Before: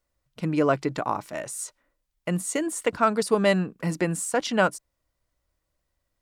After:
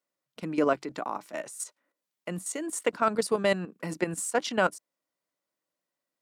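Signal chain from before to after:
high-pass filter 190 Hz 24 dB per octave
output level in coarse steps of 11 dB

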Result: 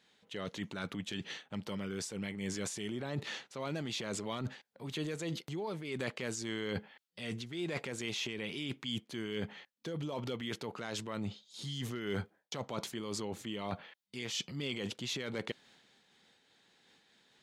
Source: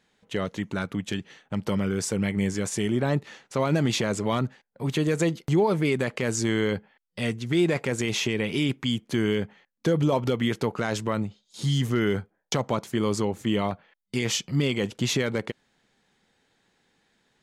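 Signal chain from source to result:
high-pass filter 150 Hz 6 dB per octave
parametric band 3,700 Hz +6.5 dB 1.1 octaves
transient designer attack −2 dB, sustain +5 dB
reversed playback
downward compressor 6 to 1, threshold −34 dBFS, peak gain reduction 14.5 dB
reversed playback
amplitude modulation by smooth noise, depth 65%
level +1.5 dB

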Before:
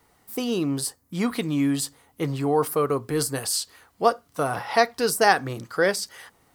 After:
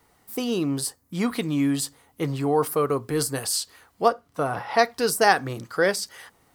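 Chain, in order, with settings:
0:04.08–0:04.79: high-shelf EQ 3,600 Hz −9 dB

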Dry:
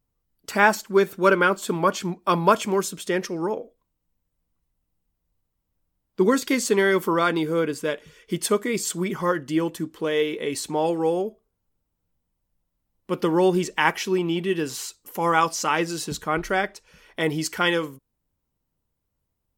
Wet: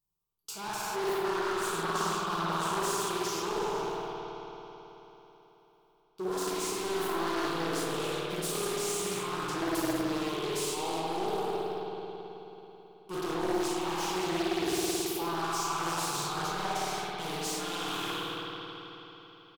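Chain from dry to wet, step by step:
peak hold with a decay on every bin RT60 1.09 s
tilt shelving filter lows −6 dB, about 1,300 Hz
reversed playback
downward compressor 6 to 1, threshold −33 dBFS, peak gain reduction 21 dB
reversed playback
leveller curve on the samples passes 3
soft clipping −26.5 dBFS, distortion −13 dB
phaser with its sweep stopped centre 370 Hz, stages 8
on a send: repeating echo 243 ms, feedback 52%, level −23 dB
on the sum: spring reverb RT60 3.8 s, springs 54 ms, chirp 50 ms, DRR −6 dB
highs frequency-modulated by the lows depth 0.59 ms
level −5 dB

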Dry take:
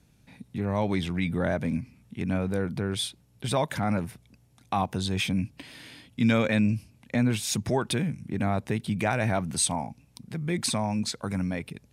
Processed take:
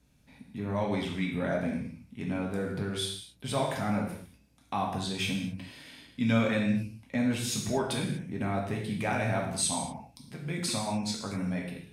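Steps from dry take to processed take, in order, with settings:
reverb whose tail is shaped and stops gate 270 ms falling, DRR −1.5 dB
level −6.5 dB

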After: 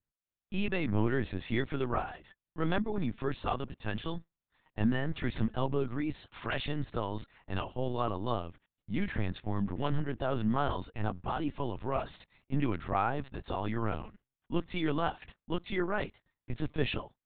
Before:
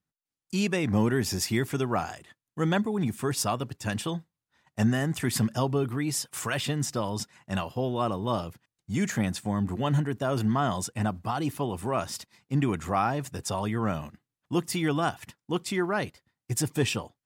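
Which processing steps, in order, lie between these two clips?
linear-prediction vocoder at 8 kHz pitch kept
level −4 dB

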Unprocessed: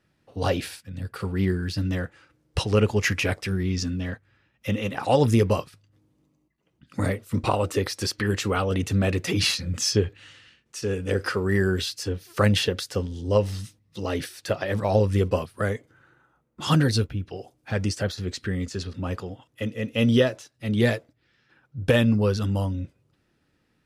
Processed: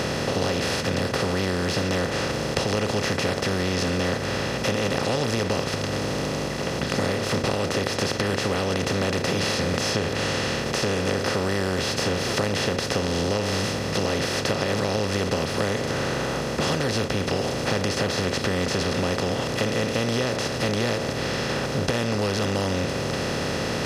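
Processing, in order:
compressor on every frequency bin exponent 0.2
downward compressor, threshold −15 dBFS, peak gain reduction 8 dB
level −5.5 dB

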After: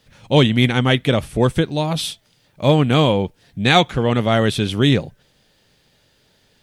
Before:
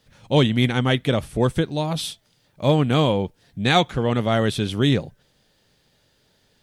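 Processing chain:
parametric band 2,500 Hz +2.5 dB
level +3.5 dB

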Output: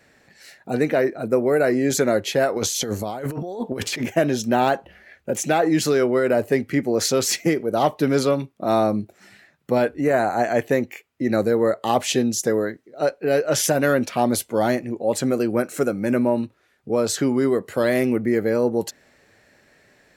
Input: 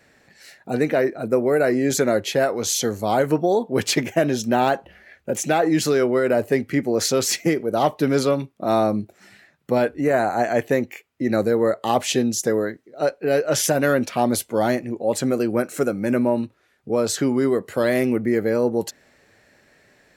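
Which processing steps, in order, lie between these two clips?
0:02.56–0:04.06: compressor whose output falls as the input rises −27 dBFS, ratio −1

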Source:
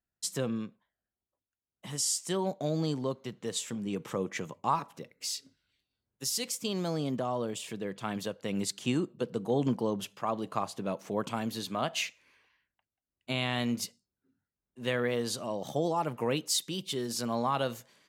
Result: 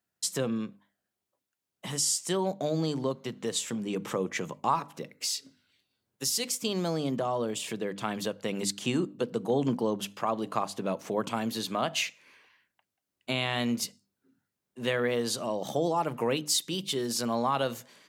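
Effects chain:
mains-hum notches 50/100/150/200/250/300 Hz
in parallel at +2.5 dB: downward compressor, threshold −40 dBFS, peak gain reduction 16.5 dB
on the sum: high-pass filter 120 Hz

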